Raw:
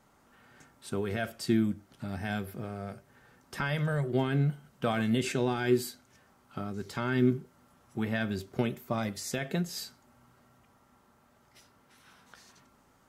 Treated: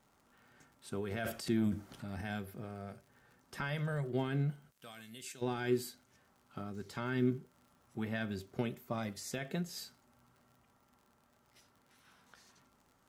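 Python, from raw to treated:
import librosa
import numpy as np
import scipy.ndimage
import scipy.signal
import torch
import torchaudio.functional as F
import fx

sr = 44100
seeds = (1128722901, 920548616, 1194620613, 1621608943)

y = fx.transient(x, sr, attack_db=0, sustain_db=12, at=(1.11, 2.22))
y = fx.pre_emphasis(y, sr, coefficient=0.9, at=(4.7, 5.41), fade=0.02)
y = fx.dmg_crackle(y, sr, seeds[0], per_s=65.0, level_db=-48.0)
y = F.gain(torch.from_numpy(y), -6.5).numpy()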